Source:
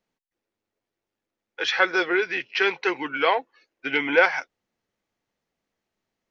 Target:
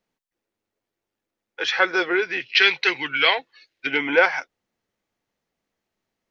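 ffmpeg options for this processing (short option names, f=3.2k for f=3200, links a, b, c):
-filter_complex "[0:a]asettb=1/sr,asplit=3[a][b][c];[a]atrim=end=2.424[d];[b]atrim=start=2.42:end=3.87,asetpts=PTS-STARTPTS,afade=t=in:d=0.004:c=qsin,afade=t=out:st=1.446:d=0.004:c=qsin,equalizer=f=125:t=o:w=1:g=6,equalizer=f=250:t=o:w=1:g=-5,equalizer=f=500:t=o:w=1:g=-3,equalizer=f=1k:t=o:w=1:g=-5,equalizer=f=2k:t=o:w=1:g=5,equalizer=f=4k:t=o:w=1:g=12[e];[c]atrim=start=3.866[f];[d][e]acrossfade=d=0.004:c1=hsin:c2=qsin[g];[g][f]acrossfade=d=0.004:c1=qsin:c2=hsin,volume=1dB"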